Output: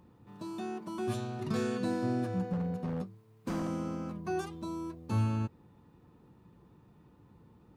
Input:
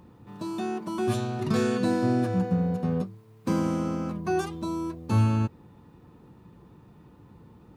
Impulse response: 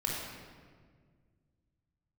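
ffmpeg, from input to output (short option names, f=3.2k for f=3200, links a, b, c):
-filter_complex "[0:a]asplit=3[a][b][c];[a]afade=t=out:st=2.52:d=0.02[d];[b]aeval=exprs='0.1*(abs(mod(val(0)/0.1+3,4)-2)-1)':c=same,afade=t=in:st=2.52:d=0.02,afade=t=out:st=3.67:d=0.02[e];[c]afade=t=in:st=3.67:d=0.02[f];[d][e][f]amix=inputs=3:normalize=0,volume=-7.5dB"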